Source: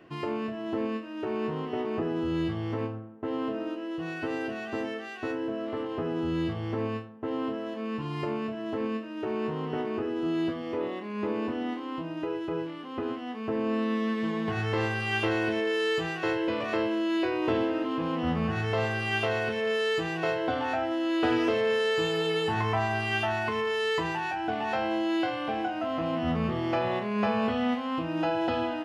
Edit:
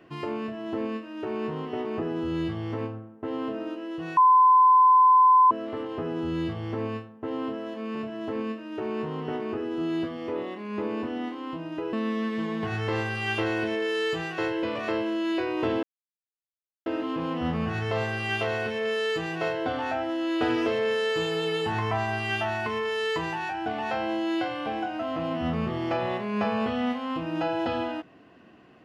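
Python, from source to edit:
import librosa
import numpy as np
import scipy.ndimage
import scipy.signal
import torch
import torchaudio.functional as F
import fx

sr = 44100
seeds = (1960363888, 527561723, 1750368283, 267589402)

y = fx.edit(x, sr, fx.bleep(start_s=4.17, length_s=1.34, hz=1020.0, db=-13.5),
    fx.cut(start_s=7.95, length_s=0.45),
    fx.cut(start_s=12.38, length_s=1.4),
    fx.insert_silence(at_s=17.68, length_s=1.03), tone=tone)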